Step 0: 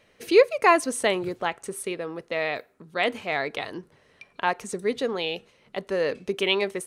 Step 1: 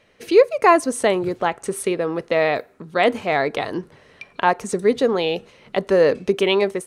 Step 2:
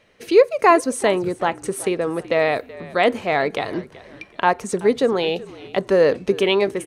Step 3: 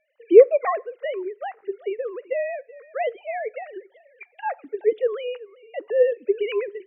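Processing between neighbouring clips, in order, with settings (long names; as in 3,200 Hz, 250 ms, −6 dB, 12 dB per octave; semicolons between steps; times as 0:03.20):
high-shelf EQ 8,900 Hz −7.5 dB; automatic gain control gain up to 8 dB; dynamic equaliser 2,800 Hz, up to −7 dB, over −35 dBFS, Q 0.72; level +3 dB
echo with shifted repeats 378 ms, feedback 37%, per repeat −54 Hz, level −19 dB
three sine waves on the formant tracks; on a send at −23 dB: convolution reverb RT60 0.50 s, pre-delay 3 ms; on the sum: level −3.5 dB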